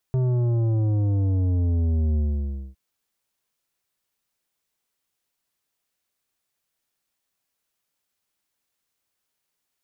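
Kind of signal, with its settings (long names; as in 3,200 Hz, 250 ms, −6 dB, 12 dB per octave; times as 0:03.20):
bass drop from 130 Hz, over 2.61 s, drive 10 dB, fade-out 0.58 s, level −20 dB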